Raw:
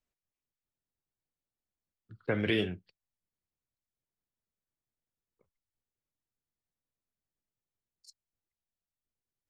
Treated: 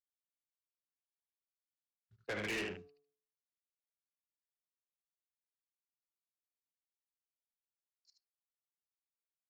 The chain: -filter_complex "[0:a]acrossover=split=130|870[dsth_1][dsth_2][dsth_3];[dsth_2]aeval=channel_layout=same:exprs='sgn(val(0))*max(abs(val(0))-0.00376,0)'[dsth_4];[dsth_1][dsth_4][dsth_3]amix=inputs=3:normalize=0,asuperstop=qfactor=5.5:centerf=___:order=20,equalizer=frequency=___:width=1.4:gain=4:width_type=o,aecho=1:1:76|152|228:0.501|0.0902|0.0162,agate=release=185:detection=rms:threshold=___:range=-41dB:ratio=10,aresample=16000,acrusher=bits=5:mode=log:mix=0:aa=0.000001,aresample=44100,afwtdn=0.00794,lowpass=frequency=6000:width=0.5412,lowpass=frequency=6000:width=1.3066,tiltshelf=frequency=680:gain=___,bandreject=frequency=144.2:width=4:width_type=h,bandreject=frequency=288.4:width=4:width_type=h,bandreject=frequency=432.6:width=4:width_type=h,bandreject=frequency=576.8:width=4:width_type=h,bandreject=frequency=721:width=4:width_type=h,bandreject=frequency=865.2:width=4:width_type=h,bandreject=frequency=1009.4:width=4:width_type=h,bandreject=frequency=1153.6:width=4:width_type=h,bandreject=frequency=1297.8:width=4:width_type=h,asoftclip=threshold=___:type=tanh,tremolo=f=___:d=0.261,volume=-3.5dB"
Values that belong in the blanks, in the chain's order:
3300, 450, -59dB, -8.5, -30dB, 280